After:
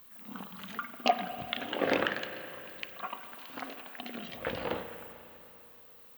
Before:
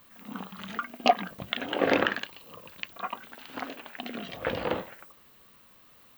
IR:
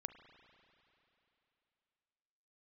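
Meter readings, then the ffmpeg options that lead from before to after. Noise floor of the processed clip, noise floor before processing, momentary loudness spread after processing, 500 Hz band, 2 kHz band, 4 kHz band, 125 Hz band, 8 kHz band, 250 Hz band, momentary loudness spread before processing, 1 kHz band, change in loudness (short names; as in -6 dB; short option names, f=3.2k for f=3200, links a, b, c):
-55 dBFS, -57 dBFS, 20 LU, -4.5 dB, -4.0 dB, -3.5 dB, -4.5 dB, -2.5 dB, -5.0 dB, 16 LU, -4.5 dB, -4.5 dB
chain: -filter_complex "[0:a]lowpass=f=2.7k:p=1,aemphasis=mode=production:type=75fm[a];[1:a]atrim=start_sample=2205[b];[a][b]afir=irnorm=-1:irlink=0"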